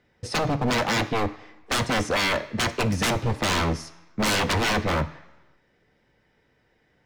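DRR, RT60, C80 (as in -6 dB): 9.0 dB, 1.1 s, 18.0 dB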